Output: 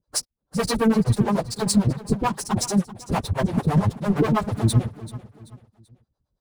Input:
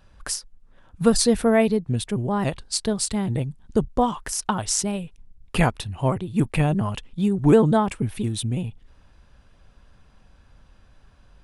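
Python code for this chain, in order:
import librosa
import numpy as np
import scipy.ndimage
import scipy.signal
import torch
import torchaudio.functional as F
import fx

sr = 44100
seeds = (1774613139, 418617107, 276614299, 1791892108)

p1 = scipy.signal.sosfilt(scipy.signal.butter(2, 55.0, 'highpass', fs=sr, output='sos'), x)
p2 = fx.spec_erase(p1, sr, start_s=1.06, length_s=0.52, low_hz=510.0, high_hz=2200.0)
p3 = fx.curve_eq(p2, sr, hz=(410.0, 980.0, 2800.0, 4000.0, 6500.0), db=(0, -5, -24, -3, -6))
p4 = fx.leveller(p3, sr, passes=5)
p5 = fx.stretch_vocoder_free(p4, sr, factor=0.56)
p6 = fx.harmonic_tremolo(p5, sr, hz=9.0, depth_pct=100, crossover_hz=420.0)
p7 = p6 + fx.echo_feedback(p6, sr, ms=385, feedback_pct=37, wet_db=-16.5, dry=0)
y = F.gain(torch.from_numpy(p7), -1.5).numpy()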